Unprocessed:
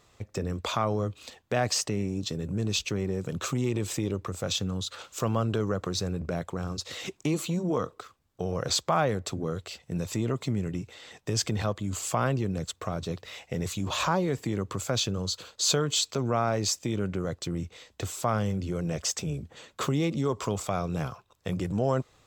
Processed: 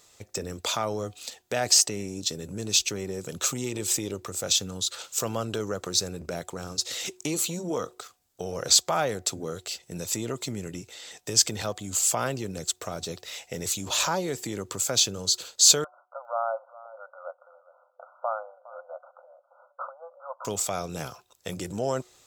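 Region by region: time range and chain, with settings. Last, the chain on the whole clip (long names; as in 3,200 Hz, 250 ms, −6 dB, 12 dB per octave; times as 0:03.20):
0:15.84–0:20.45: linear-phase brick-wall band-pass 510–1,500 Hz + single-tap delay 410 ms −18.5 dB
whole clip: bass and treble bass −8 dB, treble +12 dB; notch filter 1,100 Hz, Q 11; hum removal 365.9 Hz, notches 2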